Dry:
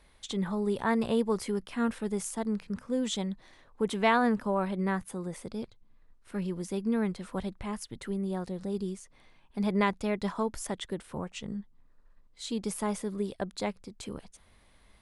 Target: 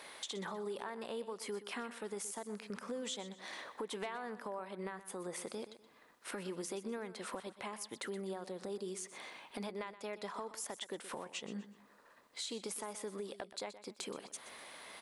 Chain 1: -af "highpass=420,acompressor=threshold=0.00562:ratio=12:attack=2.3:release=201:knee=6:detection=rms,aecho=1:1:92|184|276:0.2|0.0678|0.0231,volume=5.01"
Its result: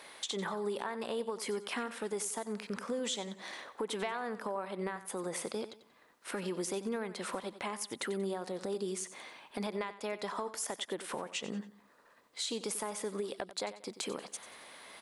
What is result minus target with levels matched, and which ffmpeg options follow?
compression: peak gain reduction -5.5 dB; echo 32 ms early
-af "highpass=420,acompressor=threshold=0.00282:ratio=12:attack=2.3:release=201:knee=6:detection=rms,aecho=1:1:124|248|372:0.2|0.0678|0.0231,volume=5.01"

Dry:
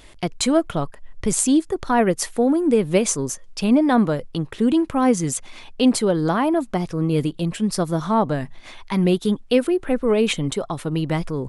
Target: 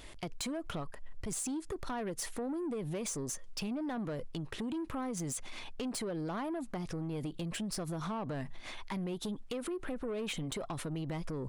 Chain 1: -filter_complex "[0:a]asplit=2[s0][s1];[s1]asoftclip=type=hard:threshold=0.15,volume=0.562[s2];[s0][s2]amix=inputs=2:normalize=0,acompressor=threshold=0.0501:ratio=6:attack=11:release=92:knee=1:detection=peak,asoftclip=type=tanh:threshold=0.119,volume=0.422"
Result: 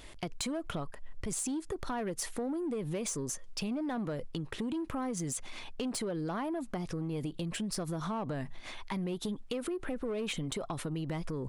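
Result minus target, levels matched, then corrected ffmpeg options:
hard clipper: distortion +24 dB; saturation: distortion -8 dB
-filter_complex "[0:a]asplit=2[s0][s1];[s1]asoftclip=type=hard:threshold=0.398,volume=0.562[s2];[s0][s2]amix=inputs=2:normalize=0,acompressor=threshold=0.0501:ratio=6:attack=11:release=92:knee=1:detection=peak,asoftclip=type=tanh:threshold=0.0596,volume=0.422"

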